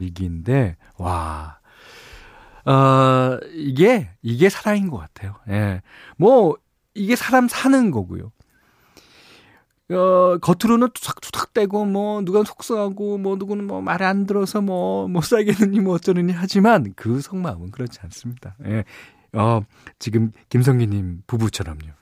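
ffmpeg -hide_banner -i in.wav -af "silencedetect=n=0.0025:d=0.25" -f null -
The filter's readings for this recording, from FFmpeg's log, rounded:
silence_start: 6.58
silence_end: 6.96 | silence_duration: 0.37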